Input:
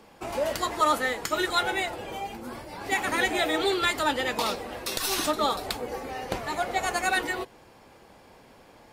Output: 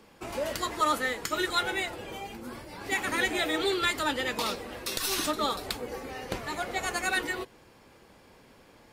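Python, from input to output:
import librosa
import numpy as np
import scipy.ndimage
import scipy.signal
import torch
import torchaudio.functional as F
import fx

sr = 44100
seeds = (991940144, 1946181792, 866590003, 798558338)

y = fx.peak_eq(x, sr, hz=750.0, db=-5.5, octaves=0.8)
y = y * librosa.db_to_amplitude(-1.5)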